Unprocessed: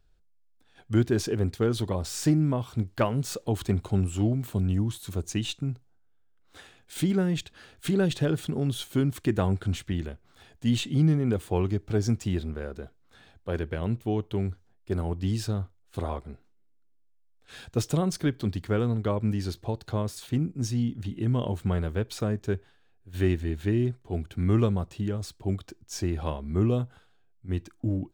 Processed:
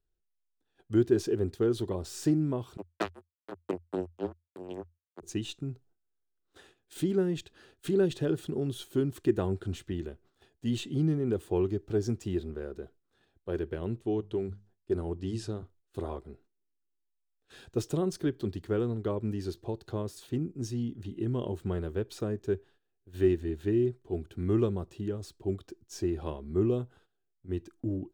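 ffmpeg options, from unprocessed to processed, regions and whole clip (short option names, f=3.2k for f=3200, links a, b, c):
-filter_complex "[0:a]asettb=1/sr,asplit=3[a][b][c];[a]atrim=end=2.774[d];[b]atrim=start=2.77:end=5.23,asetpts=PTS-STARTPTS,afade=t=in:d=0.004:c=qsin,afade=t=out:st=2.456:d=0.004:c=qsin,acrusher=bits=2:mix=0:aa=0.5,afreqshift=84[e];[c]atrim=start=5.226[f];[d][e]acrossfade=d=0.004:c1=hsin:c2=qsin[g];[g][f]acrossfade=d=0.004:c1=qsin:c2=hsin,asettb=1/sr,asplit=3[h][i][j];[h]atrim=end=14.014[k];[i]atrim=start=14.01:end=15.63,asetpts=PTS-STARTPTS,afade=t=in:d=0.004:c=qsin,afade=t=out:st=1.616:d=0.004:c=qsin,lowpass=f=11k:w=0.5412,lowpass=f=11k:w=1.3066,bandreject=f=50:t=h:w=6,bandreject=f=100:t=h:w=6,bandreject=f=150:t=h:w=6,bandreject=f=200:t=h:w=6[l];[j]atrim=start=15.626[m];[k][l]acrossfade=d=0.004:c1=hsin:c2=qsin[n];[n][m]acrossfade=d=0.004:c1=qsin:c2=hsin,bandreject=f=2.2k:w=11,agate=range=-10dB:threshold=-53dB:ratio=16:detection=peak,equalizer=f=370:w=2.6:g=11,volume=-7.5dB"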